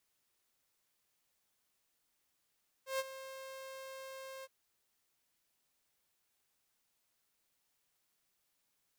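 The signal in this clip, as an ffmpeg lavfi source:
-f lavfi -i "aevalsrc='0.0335*(2*mod(532*t,1)-1)':d=1.616:s=44100,afade=t=in:d=0.133,afade=t=out:st=0.133:d=0.034:silence=0.2,afade=t=out:st=1.58:d=0.036"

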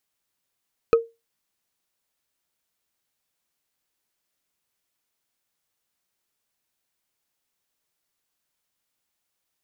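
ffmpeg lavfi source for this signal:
-f lavfi -i "aevalsrc='0.355*pow(10,-3*t/0.23)*sin(2*PI*460*t)+0.141*pow(10,-3*t/0.068)*sin(2*PI*1268.2*t)+0.0562*pow(10,-3*t/0.03)*sin(2*PI*2485.8*t)+0.0224*pow(10,-3*t/0.017)*sin(2*PI*4109.2*t)+0.00891*pow(10,-3*t/0.01)*sin(2*PI*6136.4*t)':d=0.45:s=44100"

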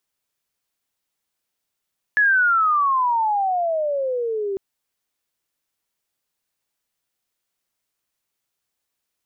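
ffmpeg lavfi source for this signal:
-f lavfi -i "aevalsrc='pow(10,(-13-9*t/2.4)/20)*sin(2*PI*1720*2.4/(-26*log(2)/12)*(exp(-26*log(2)/12*t/2.4)-1))':d=2.4:s=44100"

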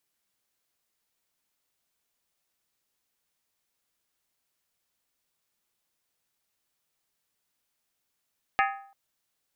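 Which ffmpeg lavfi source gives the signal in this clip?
-f lavfi -i "aevalsrc='0.0891*pow(10,-3*t/0.56)*sin(2*PI*789*t)+0.0708*pow(10,-3*t/0.444)*sin(2*PI*1257.7*t)+0.0562*pow(10,-3*t/0.383)*sin(2*PI*1685.3*t)+0.0447*pow(10,-3*t/0.37)*sin(2*PI*1811.5*t)+0.0355*pow(10,-3*t/0.344)*sin(2*PI*2093.2*t)+0.0282*pow(10,-3*t/0.328)*sin(2*PI*2302.3*t)+0.0224*pow(10,-3*t/0.315)*sin(2*PI*2490.1*t)+0.0178*pow(10,-3*t/0.299)*sin(2*PI*2762.3*t)':d=0.34:s=44100"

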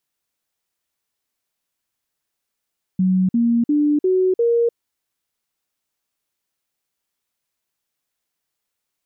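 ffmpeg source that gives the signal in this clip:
-f lavfi -i "aevalsrc='0.211*clip(min(mod(t,0.35),0.3-mod(t,0.35))/0.005,0,1)*sin(2*PI*186*pow(2,floor(t/0.35)/3)*mod(t,0.35))':d=1.75:s=44100"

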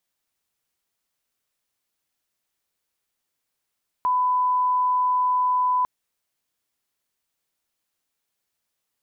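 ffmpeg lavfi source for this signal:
-f lavfi -i "sine=f=1000:d=1.8:r=44100,volume=0.06dB"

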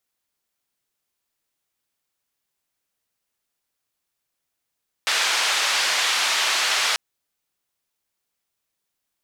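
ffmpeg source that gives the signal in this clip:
-f lavfi -i "anoisesrc=c=white:d=1.89:r=44100:seed=1,highpass=f=870,lowpass=f=4600,volume=-9.3dB"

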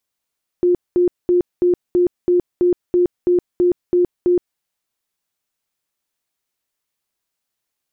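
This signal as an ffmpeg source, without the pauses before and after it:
-f lavfi -i "aevalsrc='0.282*sin(2*PI*355*mod(t,0.33))*lt(mod(t,0.33),42/355)':d=3.96:s=44100"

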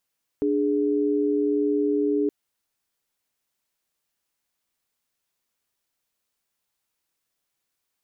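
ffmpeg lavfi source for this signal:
-f lavfi -i "aevalsrc='0.075*(sin(2*PI*293.66*t)+sin(2*PI*415.3*t))':d=1.87:s=44100"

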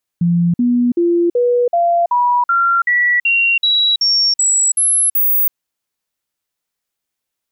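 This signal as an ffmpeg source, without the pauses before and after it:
-f lavfi -i "aevalsrc='0.299*clip(min(mod(t,0.38),0.33-mod(t,0.38))/0.005,0,1)*sin(2*PI*172*pow(2,floor(t/0.38)/2)*mod(t,0.38))':d=5.32:s=44100"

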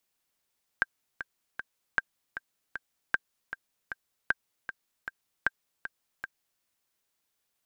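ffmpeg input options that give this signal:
-f lavfi -i "aevalsrc='pow(10,(-10.5-11.5*gte(mod(t,3*60/155),60/155))/20)*sin(2*PI*1580*mod(t,60/155))*exp(-6.91*mod(t,60/155)/0.03)':d=5.8:s=44100"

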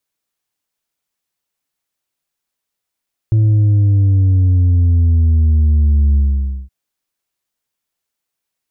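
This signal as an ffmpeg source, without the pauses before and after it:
-f lavfi -i "aevalsrc='0.355*clip((3.37-t)/0.53,0,1)*tanh(1.5*sin(2*PI*110*3.37/log(65/110)*(exp(log(65/110)*t/3.37)-1)))/tanh(1.5)':d=3.37:s=44100"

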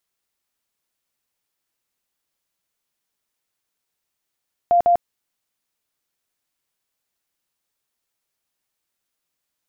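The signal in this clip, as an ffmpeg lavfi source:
-f lavfi -i "aevalsrc='0.266*sin(2*PI*696*mod(t,0.15))*lt(mod(t,0.15),67/696)':d=0.3:s=44100"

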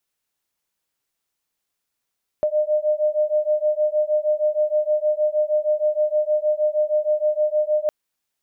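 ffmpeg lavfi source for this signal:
-f lavfi -i "aevalsrc='0.0944*(sin(2*PI*604*t)+sin(2*PI*610.4*t))':d=5.46:s=44100"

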